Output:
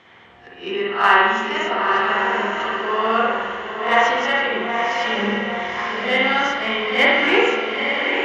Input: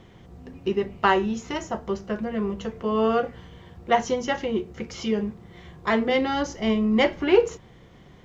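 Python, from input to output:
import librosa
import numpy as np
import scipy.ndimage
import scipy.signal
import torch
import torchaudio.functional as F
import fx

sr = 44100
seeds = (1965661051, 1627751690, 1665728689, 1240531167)

p1 = fx.spec_swells(x, sr, rise_s=0.32)
p2 = fx.bandpass_q(p1, sr, hz=1900.0, q=1.0)
p3 = fx.over_compress(p2, sr, threshold_db=-40.0, ratio=-1.0, at=(5.09, 5.99))
p4 = fx.echo_diffused(p3, sr, ms=918, feedback_pct=43, wet_db=-5.0)
p5 = 10.0 ** (-26.0 / 20.0) * np.tanh(p4 / 10.0 ** (-26.0 / 20.0))
p6 = p4 + (p5 * librosa.db_to_amplitude(-6.0))
p7 = fx.rev_spring(p6, sr, rt60_s=1.2, pass_ms=(49,), chirp_ms=30, drr_db=-4.5)
y = p7 * librosa.db_to_amplitude(4.0)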